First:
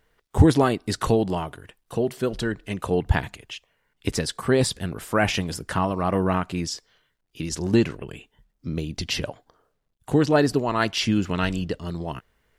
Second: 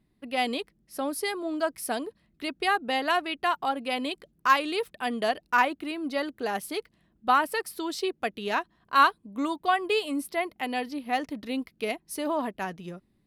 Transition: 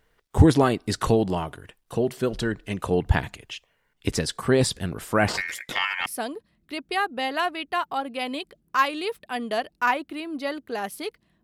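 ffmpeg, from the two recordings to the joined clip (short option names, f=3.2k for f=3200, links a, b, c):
-filter_complex "[0:a]asettb=1/sr,asplit=3[a][b][c];[a]atrim=end=5.284[d];[b]atrim=start=5.28:end=6.06,asetpts=PTS-STARTPTS,afade=t=in:d=0.004:c=qsin,afade=t=out:st=0.776:d=0.004:c=qsin,aeval=exprs='val(0)*sin(2*PI*2000*n/s)':c=same[e];[c]atrim=start=6.056[f];[d][e]acrossfade=d=0.004:c1=hsin:c2=qsin[g];[g][f]acrossfade=d=0.004:c1=qsin:c2=hsin,apad=whole_dur=11.43,atrim=end=11.43,atrim=end=6.062[h];[1:a]atrim=start=1.768:end=7.14[i];[h][i]acrossfade=d=0.004:c1=hsin:c2=hsin"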